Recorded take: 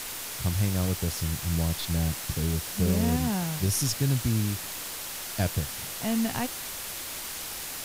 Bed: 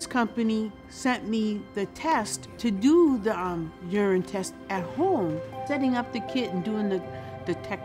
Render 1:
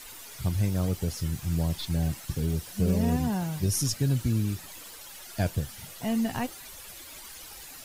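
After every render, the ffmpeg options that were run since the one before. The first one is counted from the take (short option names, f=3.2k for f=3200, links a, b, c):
-af "afftdn=nr=12:nf=-37"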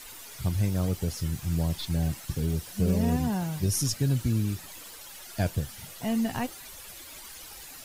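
-af anull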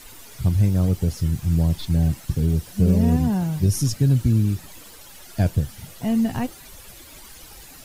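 -af "lowshelf=f=420:g=9"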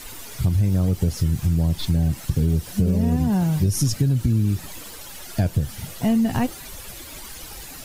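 -filter_complex "[0:a]asplit=2[a][b];[b]alimiter=limit=-16.5dB:level=0:latency=1:release=132,volume=-1dB[c];[a][c]amix=inputs=2:normalize=0,acompressor=threshold=-16dB:ratio=6"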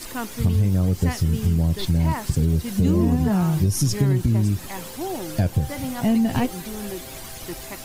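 -filter_complex "[1:a]volume=-5.5dB[a];[0:a][a]amix=inputs=2:normalize=0"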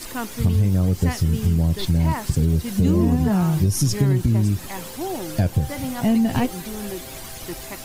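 -af "volume=1dB"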